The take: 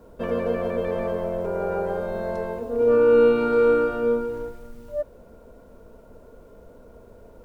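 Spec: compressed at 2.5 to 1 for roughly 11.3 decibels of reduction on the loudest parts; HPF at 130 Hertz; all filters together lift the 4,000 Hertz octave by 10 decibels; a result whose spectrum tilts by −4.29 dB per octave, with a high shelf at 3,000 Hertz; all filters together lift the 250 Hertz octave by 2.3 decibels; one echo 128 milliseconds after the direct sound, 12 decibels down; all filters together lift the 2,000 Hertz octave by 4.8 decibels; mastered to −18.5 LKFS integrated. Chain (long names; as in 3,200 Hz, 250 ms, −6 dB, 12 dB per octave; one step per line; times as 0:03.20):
high-pass filter 130 Hz
parametric band 250 Hz +3 dB
parametric band 2,000 Hz +3.5 dB
high-shelf EQ 3,000 Hz +6 dB
parametric band 4,000 Hz +8 dB
downward compressor 2.5 to 1, threshold −30 dBFS
single-tap delay 128 ms −12 dB
level +12 dB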